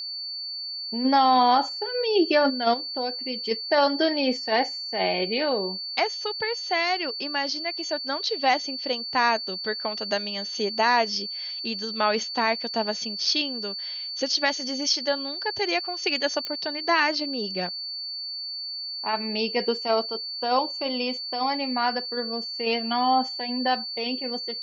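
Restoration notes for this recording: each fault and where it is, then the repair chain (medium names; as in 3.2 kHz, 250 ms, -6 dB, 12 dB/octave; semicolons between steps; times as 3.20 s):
whine 4.5 kHz -31 dBFS
16.45 s: pop -16 dBFS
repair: de-click; band-stop 4.5 kHz, Q 30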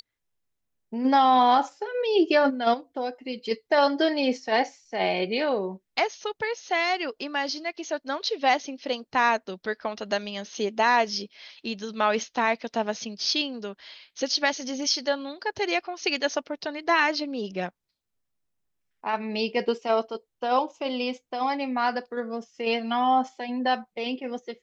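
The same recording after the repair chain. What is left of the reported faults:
16.45 s: pop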